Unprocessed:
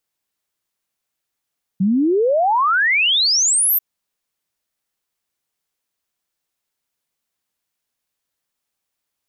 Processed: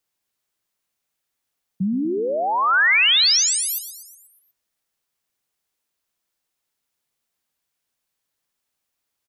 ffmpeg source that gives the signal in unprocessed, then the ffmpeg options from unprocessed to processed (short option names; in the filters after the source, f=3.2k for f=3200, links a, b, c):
-f lavfi -i "aevalsrc='0.224*clip(min(t,1.99-t)/0.01,0,1)*sin(2*PI*180*1.99/log(14000/180)*(exp(log(14000/180)*t/1.99)-1))':d=1.99:s=44100"
-filter_complex "[0:a]acrossover=split=130|1400|6100[a][b][c][d];[b]alimiter=limit=-20.5dB:level=0:latency=1[e];[d]acompressor=threshold=-26dB:ratio=6[f];[a][e][c][f]amix=inputs=4:normalize=0,aecho=1:1:121|242|363|484|605|726:0.251|0.138|0.076|0.0418|0.023|0.0126"